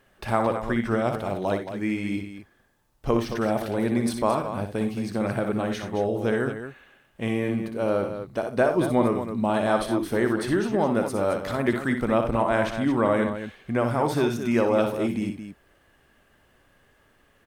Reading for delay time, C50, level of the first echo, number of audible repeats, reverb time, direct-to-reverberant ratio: 60 ms, no reverb audible, −7.0 dB, 3, no reverb audible, no reverb audible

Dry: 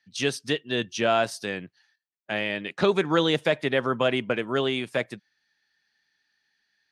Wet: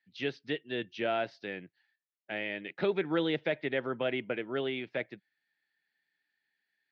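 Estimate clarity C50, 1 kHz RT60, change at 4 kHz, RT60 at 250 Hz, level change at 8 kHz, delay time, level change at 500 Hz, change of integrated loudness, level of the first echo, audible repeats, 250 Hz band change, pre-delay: no reverb audible, no reverb audible, −11.0 dB, no reverb audible, can't be measured, no echo audible, −7.5 dB, −8.5 dB, no echo audible, no echo audible, −7.5 dB, no reverb audible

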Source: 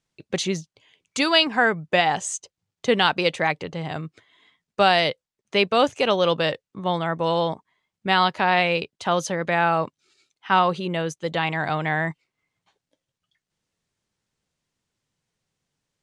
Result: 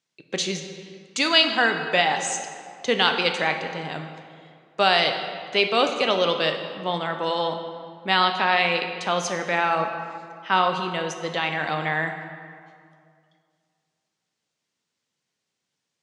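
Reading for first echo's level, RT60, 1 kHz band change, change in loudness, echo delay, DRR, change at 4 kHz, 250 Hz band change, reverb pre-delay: no echo audible, 2.3 s, −1.0 dB, −0.5 dB, no echo audible, 5.0 dB, +2.0 dB, −3.5 dB, 9 ms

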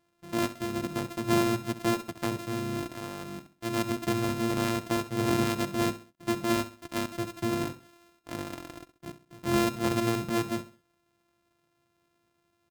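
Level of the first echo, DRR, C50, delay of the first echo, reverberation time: −14.0 dB, no reverb audible, no reverb audible, 66 ms, no reverb audible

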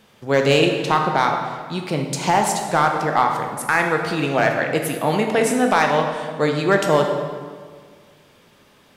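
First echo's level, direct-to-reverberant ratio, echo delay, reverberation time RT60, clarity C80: no echo audible, 2.5 dB, no echo audible, 1.8 s, 6.0 dB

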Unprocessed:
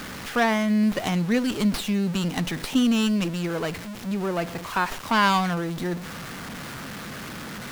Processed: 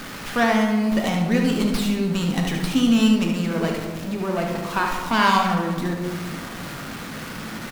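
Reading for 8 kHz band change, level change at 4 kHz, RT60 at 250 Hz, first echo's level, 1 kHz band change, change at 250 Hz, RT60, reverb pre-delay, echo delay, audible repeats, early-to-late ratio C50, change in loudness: +1.5 dB, +2.0 dB, 1.8 s, −6.5 dB, +3.0 dB, +3.0 dB, 1.5 s, 3 ms, 73 ms, 1, 2.5 dB, +3.0 dB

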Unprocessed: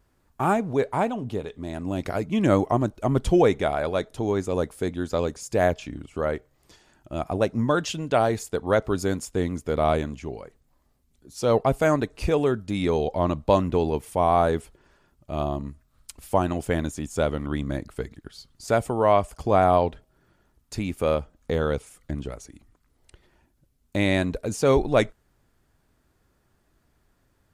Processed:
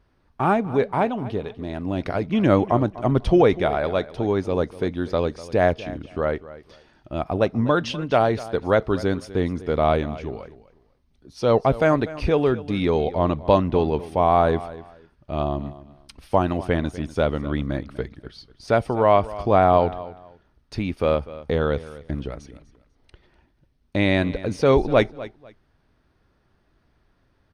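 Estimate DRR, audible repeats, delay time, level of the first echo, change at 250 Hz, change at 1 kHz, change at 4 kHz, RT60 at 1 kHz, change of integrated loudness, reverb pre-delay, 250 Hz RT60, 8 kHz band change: no reverb audible, 2, 247 ms, −17.0 dB, +2.5 dB, +2.5 dB, +2.0 dB, no reverb audible, +2.5 dB, no reverb audible, no reverb audible, can't be measured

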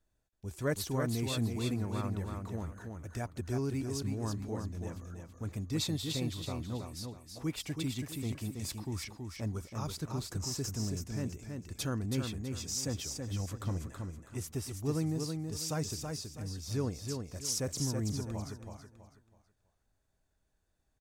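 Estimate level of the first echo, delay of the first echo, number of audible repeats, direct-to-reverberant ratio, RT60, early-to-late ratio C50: −5.0 dB, 326 ms, 3, no reverb audible, no reverb audible, no reverb audible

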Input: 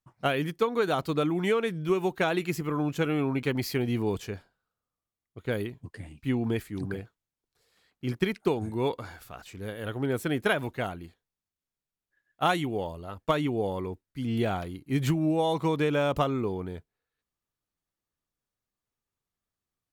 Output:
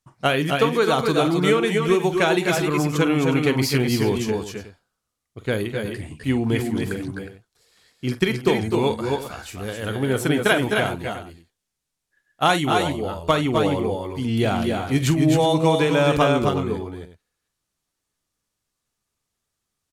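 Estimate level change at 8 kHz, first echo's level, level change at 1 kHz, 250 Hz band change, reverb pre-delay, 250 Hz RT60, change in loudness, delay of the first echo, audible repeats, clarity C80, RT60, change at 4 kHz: +13.0 dB, −12.5 dB, +8.5 dB, +8.0 dB, no reverb audible, no reverb audible, +8.0 dB, 45 ms, 3, no reverb audible, no reverb audible, +11.0 dB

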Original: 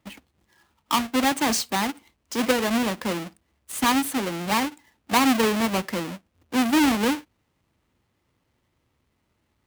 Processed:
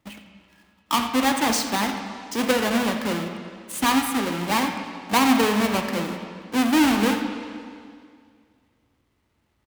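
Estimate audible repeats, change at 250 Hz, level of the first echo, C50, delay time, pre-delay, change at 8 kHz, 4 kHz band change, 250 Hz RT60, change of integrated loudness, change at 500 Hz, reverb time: 1, +1.5 dB, −13.5 dB, 5.5 dB, 87 ms, 17 ms, +0.5 dB, +1.0 dB, 2.2 s, +1.0 dB, +1.0 dB, 2.1 s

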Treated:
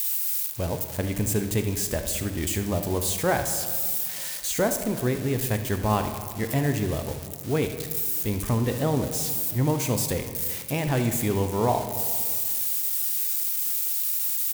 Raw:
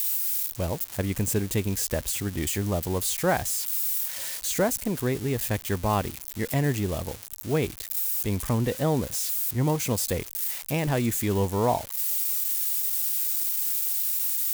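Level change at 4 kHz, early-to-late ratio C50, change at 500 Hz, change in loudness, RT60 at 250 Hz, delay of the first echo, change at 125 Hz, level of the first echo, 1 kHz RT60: +0.5 dB, 8.0 dB, +1.0 dB, +0.5 dB, 2.2 s, 75 ms, +1.0 dB, −14.0 dB, 1.9 s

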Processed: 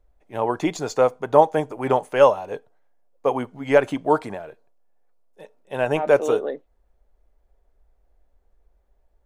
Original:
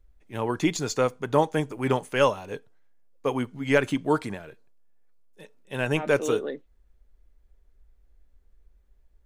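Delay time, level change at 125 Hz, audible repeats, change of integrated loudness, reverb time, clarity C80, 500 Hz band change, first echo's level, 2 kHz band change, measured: no echo audible, −2.5 dB, no echo audible, +5.0 dB, no reverb audible, no reverb audible, +6.5 dB, no echo audible, 0.0 dB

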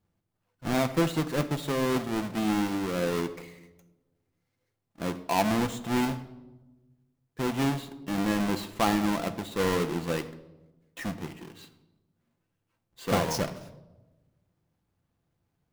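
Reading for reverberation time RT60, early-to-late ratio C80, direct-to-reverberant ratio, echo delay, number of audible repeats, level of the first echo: 1.1 s, 16.0 dB, 9.0 dB, no echo audible, no echo audible, no echo audible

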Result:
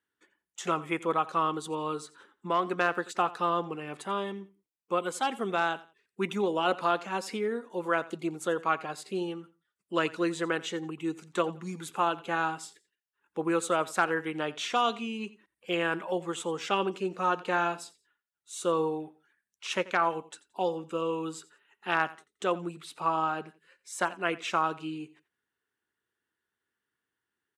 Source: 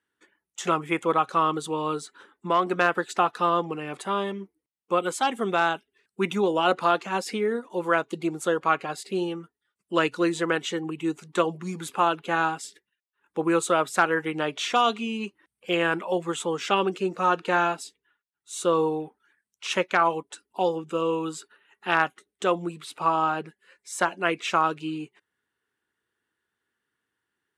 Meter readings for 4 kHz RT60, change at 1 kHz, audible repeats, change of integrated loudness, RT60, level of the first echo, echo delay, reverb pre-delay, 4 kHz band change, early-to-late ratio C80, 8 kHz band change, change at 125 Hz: no reverb audible, −5.0 dB, 2, −5.0 dB, no reverb audible, −19.0 dB, 87 ms, no reverb audible, −5.0 dB, no reverb audible, −5.0 dB, −5.0 dB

